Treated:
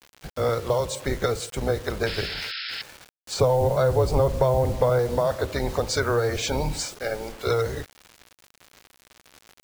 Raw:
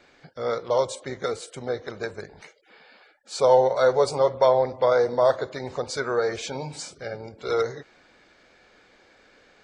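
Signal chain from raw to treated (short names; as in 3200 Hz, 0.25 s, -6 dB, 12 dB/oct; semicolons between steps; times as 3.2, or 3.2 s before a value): octaver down 2 oct, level +2 dB; in parallel at +0.5 dB: limiter -13.5 dBFS, peak gain reduction 7.5 dB; on the sum: compressor 10:1, threshold -19 dBFS, peak gain reduction 11.5 dB; 3.34–4.99 tilt -2 dB/oct; bit-crush 7-bit; 2.06–2.82 painted sound noise 1300–5400 Hz -33 dBFS; 6.86–7.47 bell 84 Hz -13.5 dB 2 oct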